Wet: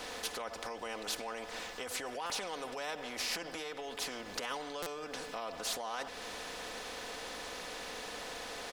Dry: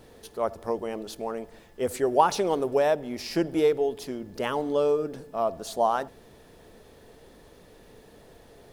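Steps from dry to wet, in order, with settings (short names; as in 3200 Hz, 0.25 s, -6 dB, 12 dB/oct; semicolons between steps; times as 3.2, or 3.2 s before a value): high shelf 5200 Hz -6.5 dB; comb 4 ms, depth 65%; compressor 3:1, threshold -36 dBFS, peak gain reduction 17 dB; limiter -33 dBFS, peak gain reduction 11.5 dB; three-band isolator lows -21 dB, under 470 Hz, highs -13 dB, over 7700 Hz; stuck buffer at 2.26/4.82, samples 256, times 6; spectral compressor 2:1; gain +11 dB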